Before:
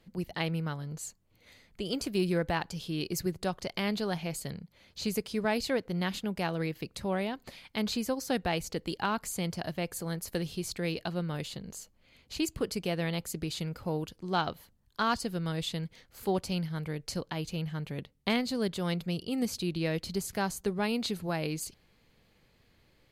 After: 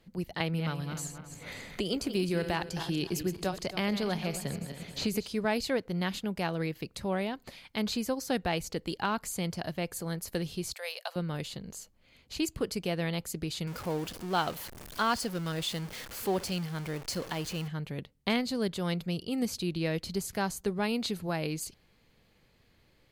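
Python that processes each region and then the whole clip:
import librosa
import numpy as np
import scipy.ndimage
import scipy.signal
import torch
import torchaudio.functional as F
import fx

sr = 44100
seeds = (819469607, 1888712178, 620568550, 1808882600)

y = fx.chain(x, sr, fx.reverse_delay_fb(ms=135, feedback_pct=49, wet_db=-10.5),
    fx.band_squash(depth_pct=70), at=(0.4, 5.28))
y = fx.chain(y, sr, fx.cheby1_highpass(hz=540.0, order=5),
    fx.high_shelf(hz=9000.0, db=11.5), at=(10.73, 11.16))
y = fx.chain(y, sr, fx.zero_step(step_db=-36.5),
    fx.low_shelf(hz=170.0, db=-7.5),
    fx.notch(hz=3900.0, q=25.0), at=(13.67, 17.68))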